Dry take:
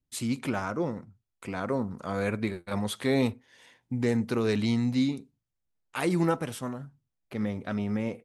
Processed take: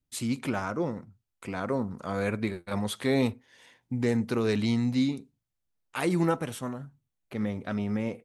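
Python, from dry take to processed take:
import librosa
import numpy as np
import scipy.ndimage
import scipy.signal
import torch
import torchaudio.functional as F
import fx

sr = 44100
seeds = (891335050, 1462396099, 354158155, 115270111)

y = fx.notch(x, sr, hz=5000.0, q=12.0, at=(6.06, 7.58))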